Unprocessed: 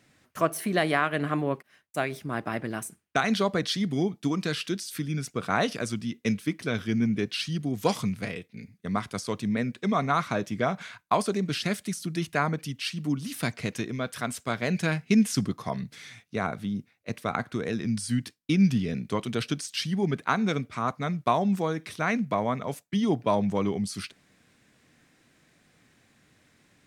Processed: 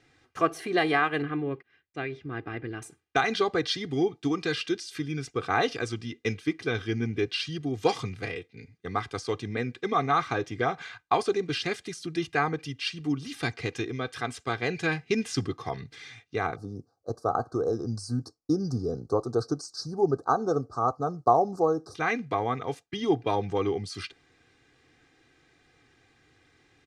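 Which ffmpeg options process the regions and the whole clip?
-filter_complex "[0:a]asettb=1/sr,asplit=3[a][b][c];[a]atrim=end=1.224[d];[b]atrim=start=1.22:end=2.82,asetpts=PTS-STARTPTS,afade=t=in:d=0.004:c=qsin,afade=t=out:st=1.596:d=0.004:c=qsin,lowpass=2.7k,equalizer=f=840:w=0.88:g=-10.5[e];[c]atrim=start=2.816[f];[d][e]acrossfade=d=0.004:c1=hsin:c2=qsin[g];[g][f]acrossfade=d=0.004:c1=qsin:c2=hsin,asettb=1/sr,asplit=3[h][i][j];[h]atrim=end=16.564[k];[i]atrim=start=16.56:end=21.95,asetpts=PTS-STARTPTS,afade=t=in:d=0.004:c=qsin,afade=t=out:st=5.386:d=0.004:c=qsin,asuperstop=centerf=2500:order=12:qfactor=0.82,equalizer=f=590:w=2.6:g=9.5[l];[j]atrim=start=21.946[m];[k][l]acrossfade=d=0.004:c1=hsin:c2=qsin[n];[n][m]acrossfade=d=0.004:c1=qsin:c2=hsin,lowpass=5.5k,aecho=1:1:2.5:0.77,volume=-1dB"

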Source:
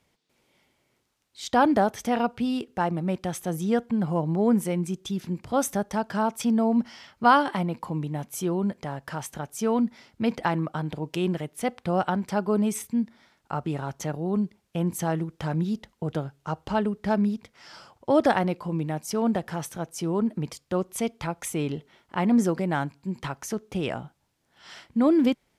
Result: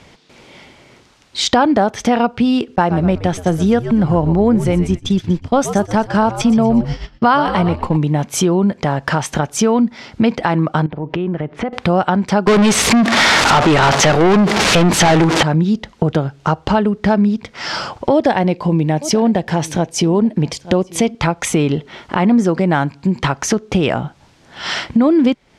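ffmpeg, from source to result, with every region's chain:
-filter_complex "[0:a]asettb=1/sr,asplit=3[a][b][c];[a]atrim=end=2.764[d];[b]atrim=start=2.76:end=7.97,asetpts=PTS-STARTPTS,afade=t=in:d=0.004:c=qsin,afade=t=out:st=5.206:d=0.004:c=qsin,asplit=6[e][f][g][h][i][j];[f]adelay=122,afreqshift=-91,volume=-11.5dB[k];[g]adelay=244,afreqshift=-182,volume=-18.1dB[l];[h]adelay=366,afreqshift=-273,volume=-24.6dB[m];[i]adelay=488,afreqshift=-364,volume=-31.2dB[n];[j]adelay=610,afreqshift=-455,volume=-37.7dB[o];[e][k][l][m][n][o]amix=inputs=6:normalize=0,atrim=end_sample=229761,agate=range=-33dB:threshold=-30dB:ratio=3:release=100:detection=peak[p];[c]atrim=start=7.966[q];[d][p]acrossfade=d=0.004:c1=hsin:c2=qsin[r];[r][q]acrossfade=d=0.004:c1=qsin:c2=hsin,asettb=1/sr,asplit=3[s][t][u];[s]atrim=end=10.864[v];[t]atrim=start=10.86:end=11.73,asetpts=PTS-STARTPTS,afade=t=in:d=0.004:c=qsin,afade=t=out:st=0.866:d=0.004:c=qsin,lowpass=1.8k,acompressor=threshold=-42dB:ratio=5:attack=3.2:release=140:knee=1:detection=peak[w];[u]atrim=start=11.726[x];[v][w]acrossfade=d=0.004:c1=hsin:c2=qsin[y];[y][x]acrossfade=d=0.004:c1=qsin:c2=hsin,asettb=1/sr,asplit=3[z][aa][ab];[z]atrim=end=12.474[ac];[aa]atrim=start=12.47:end=15.43,asetpts=PTS-STARTPTS,afade=t=in:d=0.004:c=qsin,afade=t=out:st=2.956:d=0.004:c=qsin,aeval=exprs='val(0)+0.5*0.0168*sgn(val(0))':c=same,asplit=2[ad][ae];[ae]highpass=f=720:p=1,volume=31dB,asoftclip=type=tanh:threshold=-13dB[af];[ad][af]amix=inputs=2:normalize=0,lowpass=f=7.8k:p=1,volume=-6dB[ag];[ab]atrim=start=15.426[ah];[ac][ag]acrossfade=d=0.004:c1=hsin:c2=qsin[ai];[ai][ah]acrossfade=d=0.004:c1=qsin:c2=hsin,asettb=1/sr,asplit=3[aj][ak][al];[aj]atrim=end=18.134[am];[ak]atrim=start=18.13:end=21.15,asetpts=PTS-STARTPTS,afade=t=in:d=0.004:c=qsin,afade=t=out:st=3.016:d=0.004:c=qsin,equalizer=f=1.3k:w=4:g=-10,aecho=1:1:885:0.0668,atrim=end_sample=133182[an];[al]atrim=start=21.146[ao];[am][an]acrossfade=d=0.004:c1=hsin:c2=qsin[ap];[ap][ao]acrossfade=d=0.004:c1=qsin:c2=hsin,lowpass=6k,acompressor=threshold=-42dB:ratio=3,alimiter=level_in=26.5dB:limit=-1dB:release=50:level=0:latency=1,volume=-1dB"

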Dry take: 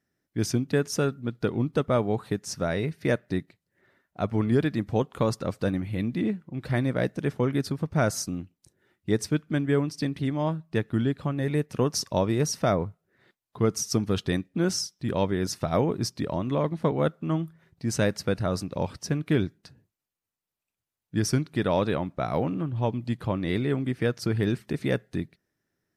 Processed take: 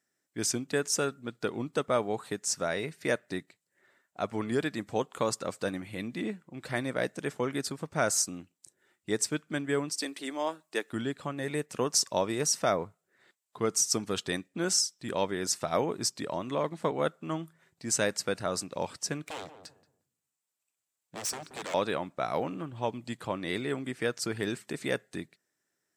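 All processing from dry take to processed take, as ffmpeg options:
-filter_complex "[0:a]asettb=1/sr,asplit=3[a][b][c];[a]atrim=end=9.924[d];[b]atrim=start=9.92:end=10.93,asetpts=PTS-STARTPTS,afade=t=in:d=0.004:c=qsin,afade=t=out:st=1.006:d=0.004:c=qsin,highpass=f=270:w=0.5412,highpass=f=270:w=1.3066,highshelf=f=5.2k:g=7.5[e];[c]atrim=start=10.926[f];[d][e]acrossfade=d=0.004:c1=hsin:c2=qsin[g];[g][f]acrossfade=d=0.004:c1=qsin:c2=hsin,asettb=1/sr,asplit=3[h][i][j];[h]atrim=end=19.244[k];[i]atrim=start=19.24:end=21.74,asetpts=PTS-STARTPTS,afade=t=in:d=0.004:c=qsin,afade=t=out:st=2.496:d=0.004:c=qsin,acompressor=threshold=-25dB:ratio=3:attack=3.2:release=140:knee=1:detection=peak,aeval=exprs='0.0316*(abs(mod(val(0)/0.0316+3,4)-2)-1)':c=same,asplit=2[l][m];[m]adelay=179,lowpass=f=840:p=1,volume=-9.5dB,asplit=2[n][o];[o]adelay=179,lowpass=f=840:p=1,volume=0.27,asplit=2[p][q];[q]adelay=179,lowpass=f=840:p=1,volume=0.27[r];[l][n][p][r]amix=inputs=4:normalize=0,atrim=end_sample=110250[s];[j]atrim=start=21.736[t];[k][s]acrossfade=d=0.004:c1=hsin:c2=qsin[u];[u][t]acrossfade=d=0.004:c1=qsin:c2=hsin,highpass=f=570:p=1,equalizer=f=7.7k:t=o:w=0.45:g=11.5"

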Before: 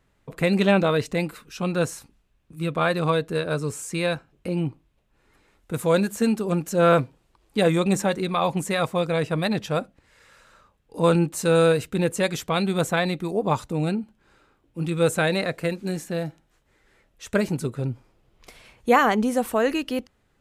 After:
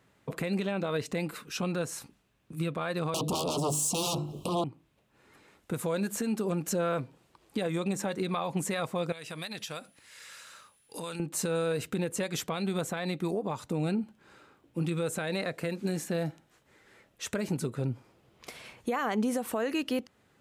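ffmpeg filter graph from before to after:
-filter_complex "[0:a]asettb=1/sr,asplit=3[a][b][c];[a]atrim=end=3.144[d];[b]atrim=start=3.14:end=4.64,asetpts=PTS-STARTPTS,afade=t=in:d=0.004:c=qsin,afade=t=out:st=1.496:d=0.004:c=qsin,bandreject=f=50:t=h:w=6,bandreject=f=100:t=h:w=6,bandreject=f=150:t=h:w=6,bandreject=f=200:t=h:w=6,bandreject=f=250:t=h:w=6,bandreject=f=300:t=h:w=6,bandreject=f=350:t=h:w=6,aeval=exprs='0.224*sin(PI/2*6.31*val(0)/0.224)':c=same,asuperstop=centerf=1800:order=8:qfactor=1.1[e];[c]atrim=start=4.636[f];[d][e]acrossfade=d=0.004:c1=hsin:c2=qsin[g];[g][f]acrossfade=d=0.004:c1=qsin:c2=hsin,asettb=1/sr,asplit=3[h][i][j];[h]atrim=end=9.124[k];[i]atrim=start=9.12:end=11.2,asetpts=PTS-STARTPTS,afade=t=in:d=0.004:c=qsin,afade=t=out:st=2.076:d=0.004:c=qsin,tiltshelf=f=1.5k:g=-9,acompressor=threshold=-38dB:ratio=8:attack=3.2:release=140:knee=1:detection=peak,aeval=exprs='val(0)+0.000355*sin(2*PI*10000*n/s)':c=same[l];[j]atrim=start=11.196[m];[k][l]acrossfade=d=0.004:c1=hsin:c2=qsin[n];[n][m]acrossfade=d=0.004:c1=qsin:c2=hsin,highpass=110,acompressor=threshold=-23dB:ratio=6,alimiter=level_in=0.5dB:limit=-24dB:level=0:latency=1:release=260,volume=-0.5dB,volume=3dB"

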